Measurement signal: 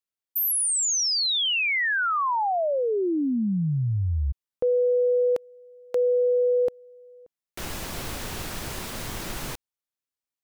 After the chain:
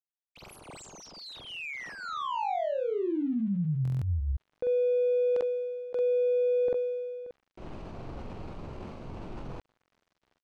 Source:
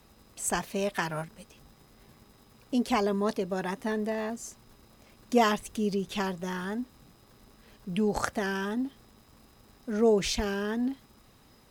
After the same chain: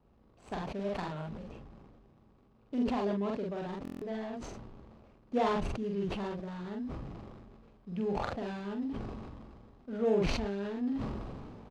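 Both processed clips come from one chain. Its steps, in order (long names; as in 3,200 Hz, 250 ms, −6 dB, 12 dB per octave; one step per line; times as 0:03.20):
running median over 25 samples
low-pass filter 4,700 Hz 12 dB per octave
double-tracking delay 45 ms −2.5 dB
buffer that repeats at 0:03.83, samples 1,024, times 7
level that may fall only so fast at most 26 dB per second
level −7.5 dB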